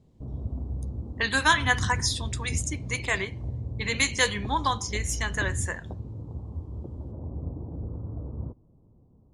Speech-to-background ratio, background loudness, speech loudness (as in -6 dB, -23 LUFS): 8.5 dB, -35.5 LUFS, -27.0 LUFS